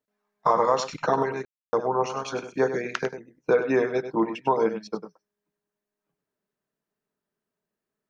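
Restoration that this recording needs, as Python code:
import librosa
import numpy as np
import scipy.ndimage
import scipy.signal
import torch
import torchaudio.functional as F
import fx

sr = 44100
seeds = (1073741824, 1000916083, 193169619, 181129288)

y = fx.fix_ambience(x, sr, seeds[0], print_start_s=6.51, print_end_s=7.01, start_s=1.45, end_s=1.73)
y = fx.fix_echo_inverse(y, sr, delay_ms=99, level_db=-10.5)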